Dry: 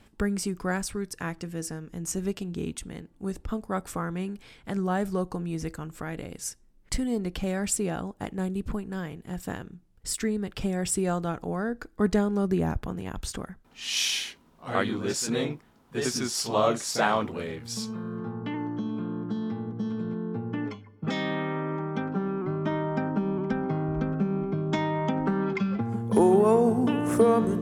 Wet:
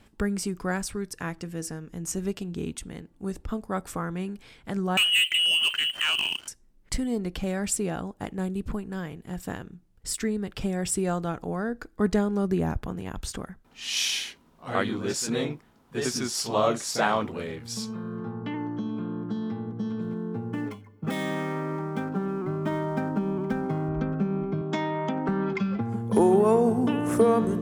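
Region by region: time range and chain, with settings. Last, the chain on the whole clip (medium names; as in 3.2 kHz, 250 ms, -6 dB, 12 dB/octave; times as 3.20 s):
4.97–6.48 s: frequency inversion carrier 3.1 kHz + waveshaping leveller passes 3
20.01–23.89 s: median filter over 9 samples + treble shelf 12 kHz +11.5 dB
24.61–25.29 s: high-pass 170 Hz + transformer saturation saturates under 330 Hz
whole clip: none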